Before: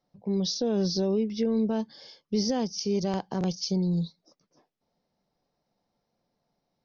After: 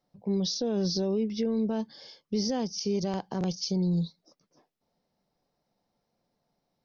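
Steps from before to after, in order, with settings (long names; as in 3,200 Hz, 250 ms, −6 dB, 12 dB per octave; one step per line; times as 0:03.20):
brickwall limiter −21 dBFS, peak gain reduction 3.5 dB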